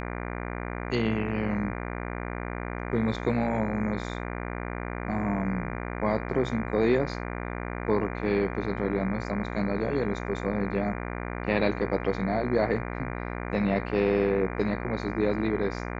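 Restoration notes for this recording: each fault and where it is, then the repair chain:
buzz 60 Hz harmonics 40 -34 dBFS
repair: de-hum 60 Hz, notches 40

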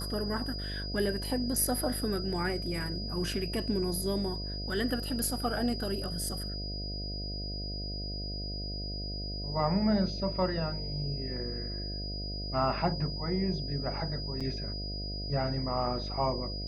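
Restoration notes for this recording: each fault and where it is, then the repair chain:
buzz 50 Hz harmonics 14 -38 dBFS
tone 4900 Hz -39 dBFS
14.4–14.41 gap 5.8 ms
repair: notch 4900 Hz, Q 30; de-hum 50 Hz, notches 14; interpolate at 14.4, 5.8 ms

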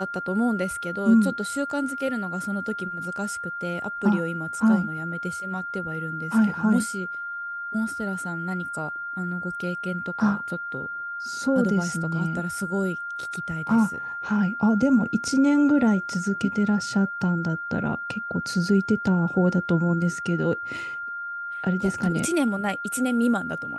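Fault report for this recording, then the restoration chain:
tone 1400 Hz -30 dBFS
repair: notch 1400 Hz, Q 30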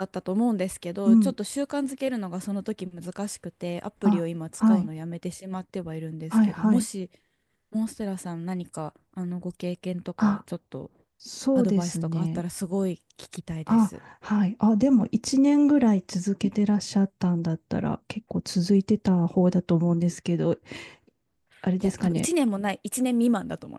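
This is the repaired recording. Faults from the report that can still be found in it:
none

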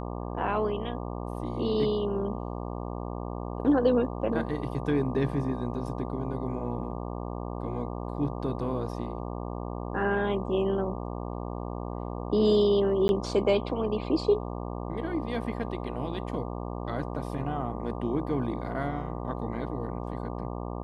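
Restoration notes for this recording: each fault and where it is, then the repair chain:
buzz 60 Hz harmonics 20 -35 dBFS
13.08–13.09 gap 11 ms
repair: de-hum 60 Hz, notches 20; interpolate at 13.08, 11 ms

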